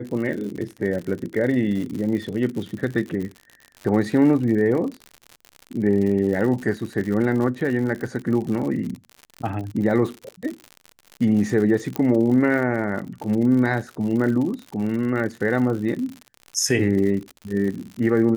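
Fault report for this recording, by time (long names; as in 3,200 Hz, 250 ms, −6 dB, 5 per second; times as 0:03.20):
surface crackle 84 per second −29 dBFS
0:11.96: click −10 dBFS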